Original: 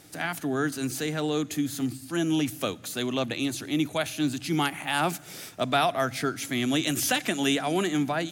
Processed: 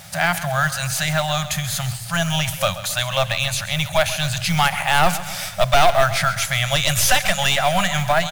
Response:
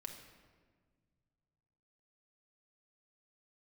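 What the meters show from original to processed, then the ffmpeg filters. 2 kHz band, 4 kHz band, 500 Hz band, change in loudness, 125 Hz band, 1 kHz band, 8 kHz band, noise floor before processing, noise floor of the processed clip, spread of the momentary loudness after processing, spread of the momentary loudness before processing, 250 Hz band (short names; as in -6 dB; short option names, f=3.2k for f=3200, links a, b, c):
+11.0 dB, +10.5 dB, +7.5 dB, +8.5 dB, +11.0 dB, +10.5 dB, +10.5 dB, -46 dBFS, -32 dBFS, 7 LU, 6 LU, -3.0 dB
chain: -filter_complex "[0:a]afftfilt=real='re*(1-between(b*sr/4096,200,530))':imag='im*(1-between(b*sr/4096,200,530))':win_size=4096:overlap=0.75,aeval=exprs='0.299*(cos(1*acos(clip(val(0)/0.299,-1,1)))-cos(1*PI/2))+0.119*(cos(5*acos(clip(val(0)/0.299,-1,1)))-cos(5*PI/2))+0.0376*(cos(6*acos(clip(val(0)/0.299,-1,1)))-cos(6*PI/2))+0.0133*(cos(8*acos(clip(val(0)/0.299,-1,1)))-cos(8*PI/2))':c=same,highshelf=f=6.9k:g=-5,asplit=2[a][b];[b]alimiter=limit=-17dB:level=0:latency=1:release=393,volume=-1.5dB[c];[a][c]amix=inputs=2:normalize=0,acrusher=bits=5:mode=log:mix=0:aa=0.000001,asubboost=boost=7:cutoff=62,acrusher=bits=7:mix=0:aa=0.000001,aecho=1:1:133|266|399|532|665:0.2|0.0958|0.046|0.0221|0.0106"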